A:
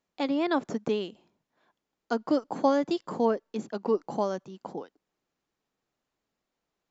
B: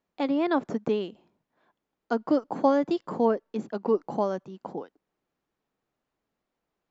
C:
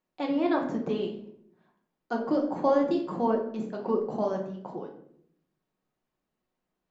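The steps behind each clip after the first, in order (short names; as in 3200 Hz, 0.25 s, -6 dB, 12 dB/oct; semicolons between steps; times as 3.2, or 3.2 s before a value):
high shelf 3900 Hz -11.5 dB; gain +2 dB
flange 1.5 Hz, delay 5.9 ms, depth 8.1 ms, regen -77%; reverb RT60 0.70 s, pre-delay 5 ms, DRR 0.5 dB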